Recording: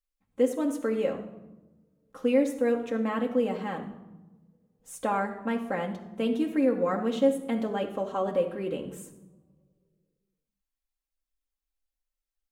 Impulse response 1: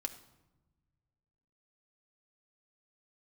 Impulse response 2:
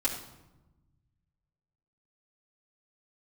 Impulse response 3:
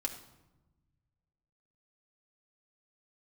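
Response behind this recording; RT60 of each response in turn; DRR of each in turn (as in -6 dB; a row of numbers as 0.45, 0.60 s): 3; 1.1, 1.0, 1.0 s; 5.0, -7.5, 1.0 dB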